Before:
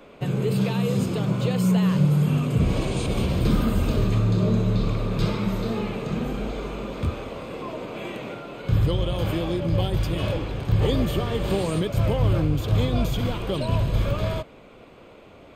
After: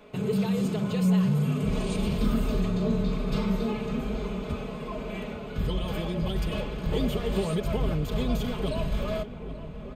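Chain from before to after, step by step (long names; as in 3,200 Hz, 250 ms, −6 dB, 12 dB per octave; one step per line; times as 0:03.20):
comb filter 4.7 ms, depth 70%
hum removal 118.1 Hz, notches 24
soft clipping −10.5 dBFS, distortion −23 dB
phase-vocoder stretch with locked phases 0.64×
feedback echo with a low-pass in the loop 830 ms, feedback 74%, low-pass 1,800 Hz, level −13 dB
level −4 dB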